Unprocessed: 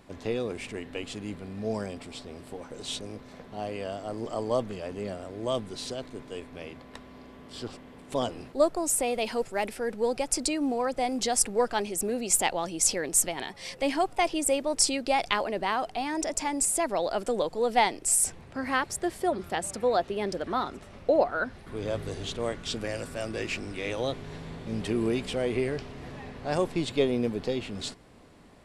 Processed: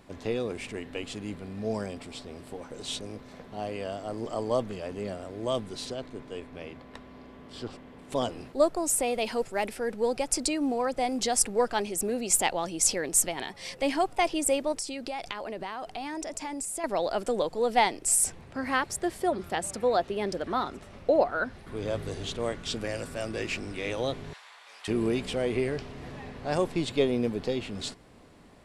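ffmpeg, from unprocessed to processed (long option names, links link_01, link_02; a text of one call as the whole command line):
ffmpeg -i in.wav -filter_complex "[0:a]asettb=1/sr,asplit=3[link_01][link_02][link_03];[link_01]atrim=end=5.854[link_04];[link_02]atrim=start=5.85:end=8.02,asetpts=PTS-STARTPTS,afade=type=in:duration=0.004:curve=qsin,afade=type=out:start_time=2.166:duration=0.004:curve=qsin,highshelf=frequency=5200:gain=-7[link_05];[link_03]atrim=start=8.016[link_06];[link_04][link_05]acrossfade=duration=0.004:curve1=hsin:curve2=qsin[link_07];[link_07][link_06]acrossfade=duration=0.004:curve1=qsin:curve2=hsin,asettb=1/sr,asplit=3[link_08][link_09][link_10];[link_08]atrim=end=14.724[link_11];[link_09]atrim=start=14.72:end=16.84,asetpts=PTS-STARTPTS,afade=type=in:duration=0.004:curve=qsin,afade=type=out:start_time=2.116:duration=0.004:curve=qsin,acompressor=threshold=-32dB:ratio=5:attack=3.2:release=140:knee=1:detection=peak[link_12];[link_10]atrim=start=16.836[link_13];[link_11][link_12]acrossfade=duration=0.004:curve1=hsin:curve2=qsin[link_14];[link_14][link_13]acrossfade=duration=0.004:curve1=qsin:curve2=hsin,asettb=1/sr,asplit=3[link_15][link_16][link_17];[link_15]atrim=end=24.334[link_18];[link_16]atrim=start=24.33:end=24.88,asetpts=PTS-STARTPTS,afade=type=in:duration=0.004:curve=qsin,afade=type=out:start_time=0.546:duration=0.004:curve=qsin,highpass=frequency=920:width=0.5412,highpass=frequency=920:width=1.3066[link_19];[link_17]atrim=start=24.876[link_20];[link_18][link_19]acrossfade=duration=0.004:curve1=hsin:curve2=qsin[link_21];[link_21][link_20]acrossfade=duration=0.004:curve1=qsin:curve2=hsin" out.wav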